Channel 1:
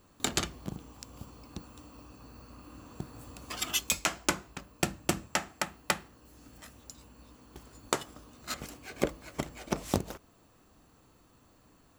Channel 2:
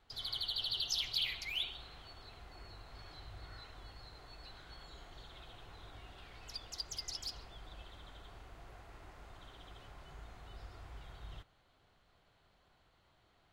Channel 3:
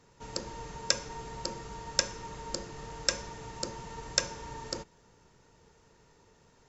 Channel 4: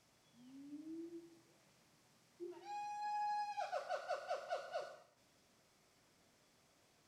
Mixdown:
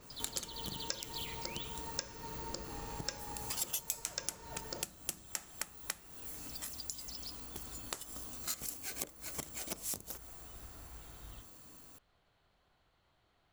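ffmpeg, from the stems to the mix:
ffmpeg -i stem1.wav -i stem2.wav -i stem3.wav -i stem4.wav -filter_complex "[0:a]acompressor=threshold=-35dB:ratio=6,crystalizer=i=2.5:c=0,adynamicequalizer=threshold=0.00355:dfrequency=4800:dqfactor=0.7:tfrequency=4800:tqfactor=0.7:attack=5:release=100:ratio=0.375:range=3.5:mode=boostabove:tftype=highshelf,volume=1dB[link_01];[1:a]volume=-3dB[link_02];[2:a]volume=-0.5dB[link_03];[3:a]volume=-5.5dB[link_04];[link_01][link_02][link_03][link_04]amix=inputs=4:normalize=0,acompressor=threshold=-41dB:ratio=2.5" out.wav

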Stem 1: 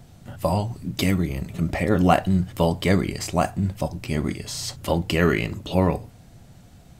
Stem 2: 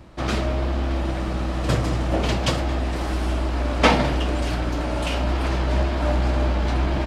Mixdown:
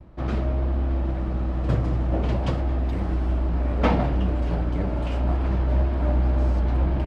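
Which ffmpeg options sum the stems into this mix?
ffmpeg -i stem1.wav -i stem2.wav -filter_complex "[0:a]adelay=1900,volume=-14.5dB[link_01];[1:a]volume=-4.5dB[link_02];[link_01][link_02]amix=inputs=2:normalize=0,lowpass=frequency=1100:poles=1,agate=range=-33dB:threshold=-51dB:ratio=3:detection=peak,lowshelf=frequency=180:gain=6" out.wav

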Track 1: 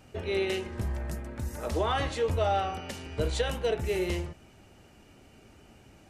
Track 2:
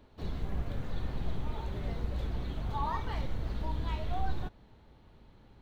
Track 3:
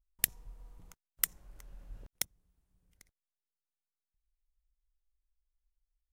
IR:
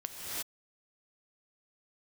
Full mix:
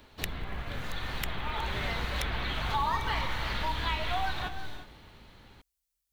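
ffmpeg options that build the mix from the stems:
-filter_complex "[1:a]equalizer=frequency=2000:width_type=o:width=2.4:gain=7.5,dynaudnorm=framelen=300:gausssize=9:maxgain=8.5dB,volume=-0.5dB,asplit=2[link_01][link_02];[link_02]volume=-13dB[link_03];[2:a]highpass=71,volume=2dB[link_04];[3:a]atrim=start_sample=2205[link_05];[link_03][link_05]afir=irnorm=-1:irlink=0[link_06];[link_01][link_04][link_06]amix=inputs=3:normalize=0,highshelf=frequency=3400:gain=12,acrossover=split=740|3600[link_07][link_08][link_09];[link_07]acompressor=threshold=-33dB:ratio=4[link_10];[link_08]acompressor=threshold=-31dB:ratio=4[link_11];[link_09]acompressor=threshold=-50dB:ratio=4[link_12];[link_10][link_11][link_12]amix=inputs=3:normalize=0,acrusher=bits=9:mode=log:mix=0:aa=0.000001"

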